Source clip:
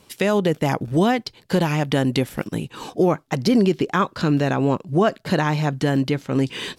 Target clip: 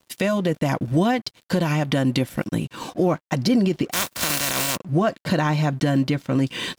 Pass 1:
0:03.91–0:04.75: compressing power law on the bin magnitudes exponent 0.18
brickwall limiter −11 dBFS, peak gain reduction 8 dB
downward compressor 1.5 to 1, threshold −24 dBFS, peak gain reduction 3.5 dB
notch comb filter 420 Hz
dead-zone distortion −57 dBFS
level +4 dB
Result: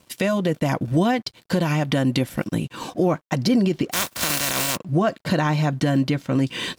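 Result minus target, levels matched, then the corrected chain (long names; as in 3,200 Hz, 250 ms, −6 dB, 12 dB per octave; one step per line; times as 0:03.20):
dead-zone distortion: distortion −6 dB
0:03.91–0:04.75: compressing power law on the bin magnitudes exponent 0.18
brickwall limiter −11 dBFS, peak gain reduction 8 dB
downward compressor 1.5 to 1, threshold −24 dBFS, peak gain reduction 3.5 dB
notch comb filter 420 Hz
dead-zone distortion −51 dBFS
level +4 dB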